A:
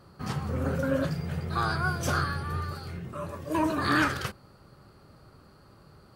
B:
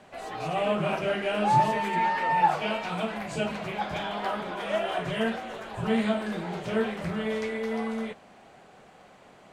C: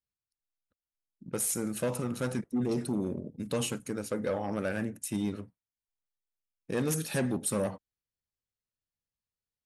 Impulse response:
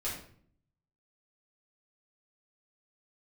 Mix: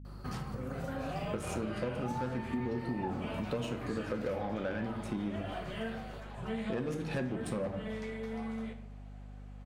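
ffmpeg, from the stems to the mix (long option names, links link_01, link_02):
-filter_complex "[0:a]acompressor=threshold=-37dB:ratio=6,adelay=50,volume=-1dB,asplit=2[link_01][link_02];[link_02]volume=-9dB[link_03];[1:a]adelay=600,volume=-13.5dB,asplit=2[link_04][link_05];[link_05]volume=-6dB[link_06];[2:a]adynamicsmooth=sensitivity=3:basefreq=2300,volume=0dB,asplit=3[link_07][link_08][link_09];[link_08]volume=-6dB[link_10];[link_09]apad=whole_len=273502[link_11];[link_01][link_11]sidechaincompress=threshold=-41dB:ratio=8:attack=16:release=299[link_12];[3:a]atrim=start_sample=2205[link_13];[link_03][link_06][link_10]amix=inputs=3:normalize=0[link_14];[link_14][link_13]afir=irnorm=-1:irlink=0[link_15];[link_12][link_04][link_07][link_15]amix=inputs=4:normalize=0,aeval=exprs='val(0)+0.00501*(sin(2*PI*50*n/s)+sin(2*PI*2*50*n/s)/2+sin(2*PI*3*50*n/s)/3+sin(2*PI*4*50*n/s)/4+sin(2*PI*5*50*n/s)/5)':channel_layout=same,acompressor=threshold=-32dB:ratio=6"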